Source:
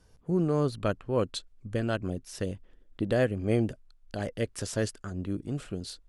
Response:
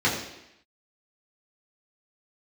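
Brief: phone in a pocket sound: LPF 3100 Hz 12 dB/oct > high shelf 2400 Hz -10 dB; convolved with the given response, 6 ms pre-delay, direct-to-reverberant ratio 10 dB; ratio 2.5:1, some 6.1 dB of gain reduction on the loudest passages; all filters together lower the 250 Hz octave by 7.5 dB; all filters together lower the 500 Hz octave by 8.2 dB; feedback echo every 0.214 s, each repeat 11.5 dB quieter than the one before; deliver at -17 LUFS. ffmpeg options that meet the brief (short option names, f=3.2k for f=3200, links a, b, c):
-filter_complex "[0:a]equalizer=f=250:t=o:g=-8.5,equalizer=f=500:t=o:g=-7,acompressor=threshold=-35dB:ratio=2.5,aecho=1:1:214|428|642:0.266|0.0718|0.0194,asplit=2[a][b];[1:a]atrim=start_sample=2205,adelay=6[c];[b][c]afir=irnorm=-1:irlink=0,volume=-25.5dB[d];[a][d]amix=inputs=2:normalize=0,lowpass=3.1k,highshelf=f=2.4k:g=-10,volume=23dB"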